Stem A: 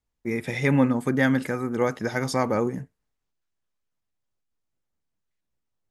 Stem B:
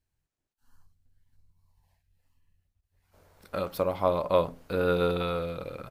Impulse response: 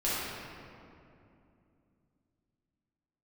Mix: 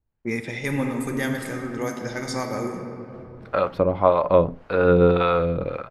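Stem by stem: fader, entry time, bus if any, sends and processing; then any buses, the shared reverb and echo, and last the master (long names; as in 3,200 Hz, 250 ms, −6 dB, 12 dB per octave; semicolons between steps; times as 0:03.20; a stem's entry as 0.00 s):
0.0 dB, 0.00 s, send −18.5 dB, low-pass that shuts in the quiet parts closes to 990 Hz, open at −19 dBFS; parametric band 9,800 Hz +11 dB 2.4 octaves; automatic ducking −9 dB, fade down 0.30 s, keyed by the second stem
+2.0 dB, 0.00 s, no send, low-pass filter 2,100 Hz 12 dB per octave; automatic gain control gain up to 13 dB; two-band tremolo in antiphase 1.8 Hz, depth 70%, crossover 500 Hz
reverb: on, RT60 2.7 s, pre-delay 5 ms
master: high-shelf EQ 11,000 Hz +11.5 dB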